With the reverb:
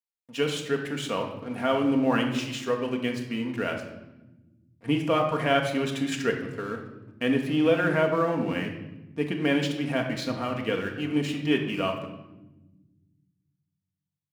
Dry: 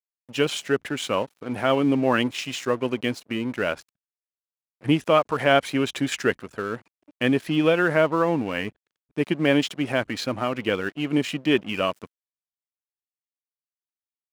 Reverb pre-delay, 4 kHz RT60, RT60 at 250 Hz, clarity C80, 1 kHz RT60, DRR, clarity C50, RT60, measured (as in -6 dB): 4 ms, 0.75 s, 2.2 s, 9.5 dB, 0.90 s, 2.0 dB, 6.5 dB, 1.0 s